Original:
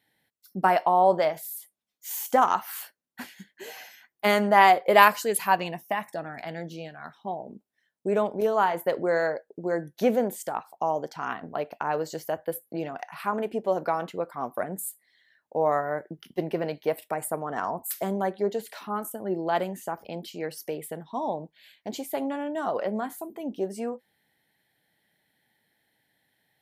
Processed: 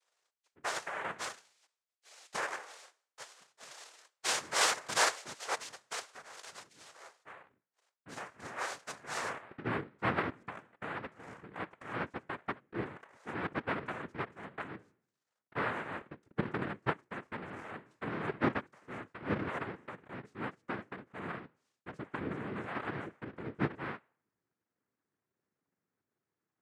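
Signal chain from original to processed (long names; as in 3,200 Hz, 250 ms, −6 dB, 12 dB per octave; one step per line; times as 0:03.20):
hum removal 182 Hz, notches 28
band-pass filter sweep 2,000 Hz → 360 Hz, 0:09.10–0:09.61
cochlear-implant simulation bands 3
level −3.5 dB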